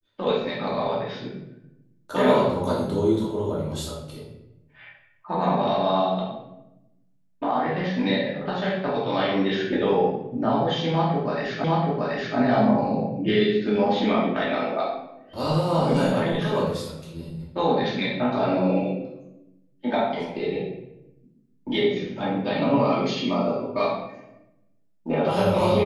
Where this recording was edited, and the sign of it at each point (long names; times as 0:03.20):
0:11.64: the same again, the last 0.73 s